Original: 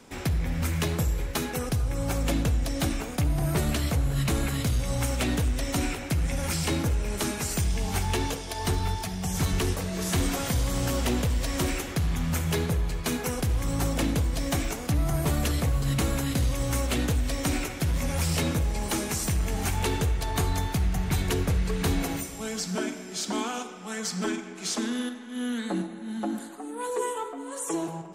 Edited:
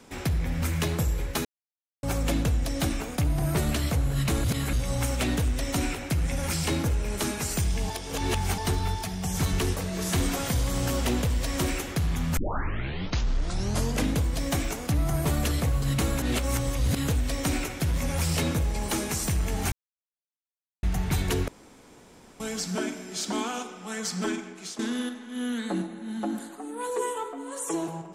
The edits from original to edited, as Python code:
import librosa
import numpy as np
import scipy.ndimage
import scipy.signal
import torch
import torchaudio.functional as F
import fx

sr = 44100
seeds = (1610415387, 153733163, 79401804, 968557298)

y = fx.edit(x, sr, fx.silence(start_s=1.45, length_s=0.58),
    fx.reverse_span(start_s=4.44, length_s=0.29),
    fx.reverse_span(start_s=7.9, length_s=0.68),
    fx.tape_start(start_s=12.37, length_s=1.79),
    fx.reverse_span(start_s=16.22, length_s=0.86),
    fx.silence(start_s=19.72, length_s=1.11),
    fx.room_tone_fill(start_s=21.48, length_s=0.92),
    fx.fade_out_to(start_s=24.44, length_s=0.35, floor_db=-14.5), tone=tone)